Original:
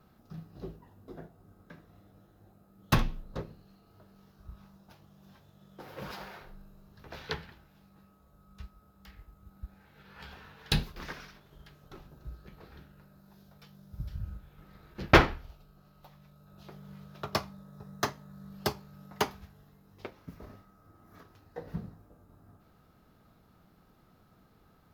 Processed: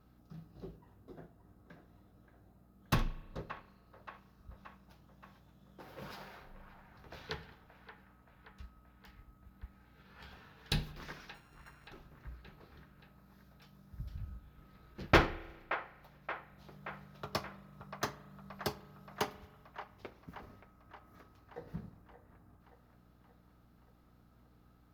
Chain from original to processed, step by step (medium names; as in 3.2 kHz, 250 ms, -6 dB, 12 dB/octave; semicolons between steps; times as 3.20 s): 11.34–11.89 s: sorted samples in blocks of 32 samples; mains buzz 60 Hz, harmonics 5, -62 dBFS -3 dB/octave; feedback echo behind a band-pass 576 ms, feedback 60%, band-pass 1.2 kHz, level -9 dB; spring tank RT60 1.2 s, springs 33 ms, chirp 65 ms, DRR 17 dB; trim -6 dB